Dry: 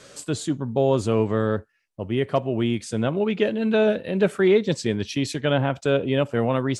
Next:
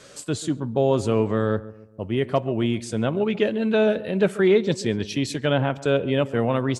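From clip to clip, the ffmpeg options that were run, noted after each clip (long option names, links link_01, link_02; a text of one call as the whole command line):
ffmpeg -i in.wav -filter_complex "[0:a]asplit=2[link_01][link_02];[link_02]adelay=138,lowpass=frequency=1300:poles=1,volume=-16.5dB,asplit=2[link_03][link_04];[link_04]adelay=138,lowpass=frequency=1300:poles=1,volume=0.44,asplit=2[link_05][link_06];[link_06]adelay=138,lowpass=frequency=1300:poles=1,volume=0.44,asplit=2[link_07][link_08];[link_08]adelay=138,lowpass=frequency=1300:poles=1,volume=0.44[link_09];[link_01][link_03][link_05][link_07][link_09]amix=inputs=5:normalize=0" out.wav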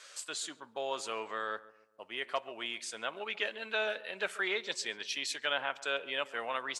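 ffmpeg -i in.wav -af "highpass=1200,highshelf=frequency=9000:gain=-5.5,volume=-2dB" out.wav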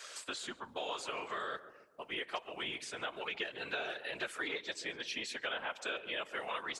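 ffmpeg -i in.wav -filter_complex "[0:a]afftfilt=real='hypot(re,im)*cos(2*PI*random(0))':imag='hypot(re,im)*sin(2*PI*random(1))':win_size=512:overlap=0.75,acrossover=split=950|3200[link_01][link_02][link_03];[link_01]acompressor=threshold=-54dB:ratio=4[link_04];[link_02]acompressor=threshold=-52dB:ratio=4[link_05];[link_03]acompressor=threshold=-59dB:ratio=4[link_06];[link_04][link_05][link_06]amix=inputs=3:normalize=0,volume=10.5dB" out.wav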